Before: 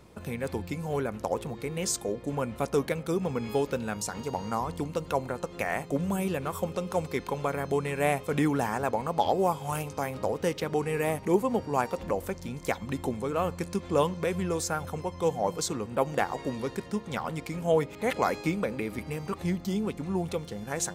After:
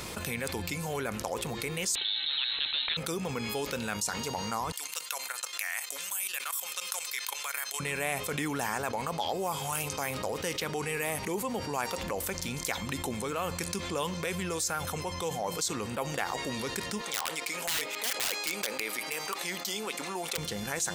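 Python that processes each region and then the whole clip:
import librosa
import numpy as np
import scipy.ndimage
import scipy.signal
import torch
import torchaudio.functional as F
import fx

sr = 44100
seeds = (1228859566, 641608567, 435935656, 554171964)

y = fx.chain(x, sr, fx.freq_invert(carrier_hz=4000),
    fx.spectral_comp(ratio=2.0), at=(1.95, 2.97))
y = fx.chain(y, sr, fx.highpass(hz=1500.0, slope=12),
    fx.high_shelf(hz=7400.0, db=9.0),
    fx.level_steps(step_db=14), at=(4.72, 7.8))
y = fx.chain(y, sr, fx.highpass(hz=480.0, slope=12),
    fx.overflow_wrap(gain_db=24.0), at=(17.01, 20.38))
y = fx.tilt_shelf(y, sr, db=-7.5, hz=1300.0)
y = fx.env_flatten(y, sr, amount_pct=70)
y = y * 10.0 ** (-8.5 / 20.0)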